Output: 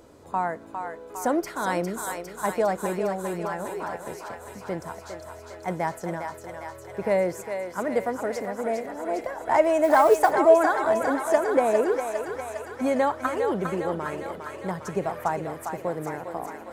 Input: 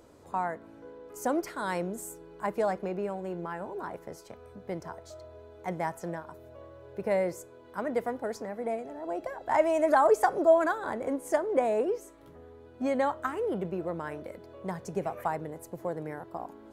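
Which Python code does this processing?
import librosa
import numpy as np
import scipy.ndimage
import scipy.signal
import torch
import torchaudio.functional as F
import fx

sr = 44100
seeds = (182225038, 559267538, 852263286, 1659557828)

y = fx.echo_thinned(x, sr, ms=405, feedback_pct=77, hz=630.0, wet_db=-5.0)
y = fx.mod_noise(y, sr, seeds[0], snr_db=27, at=(9.83, 10.31))
y = F.gain(torch.from_numpy(y), 4.5).numpy()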